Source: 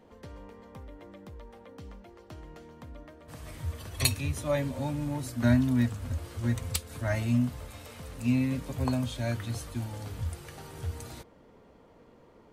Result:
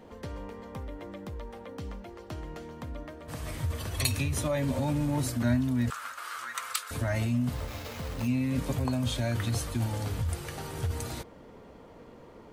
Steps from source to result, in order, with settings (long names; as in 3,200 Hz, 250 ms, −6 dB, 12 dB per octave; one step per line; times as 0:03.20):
in parallel at +2.5 dB: compressor whose output falls as the input rises −33 dBFS, ratio −0.5
0:05.90–0:06.91: on the sum: high-pass with resonance 1,300 Hz, resonance Q 4.9
0:07.55–0:08.28: sample-rate reduction 9,000 Hz, jitter 0%
level −3.5 dB